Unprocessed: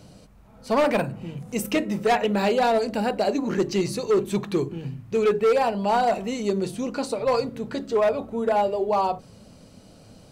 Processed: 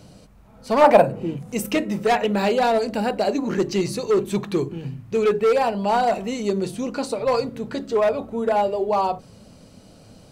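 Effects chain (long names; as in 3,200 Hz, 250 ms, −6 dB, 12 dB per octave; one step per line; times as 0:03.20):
0:00.80–0:01.35: parametric band 1,000 Hz → 300 Hz +13.5 dB 0.98 octaves
level +1.5 dB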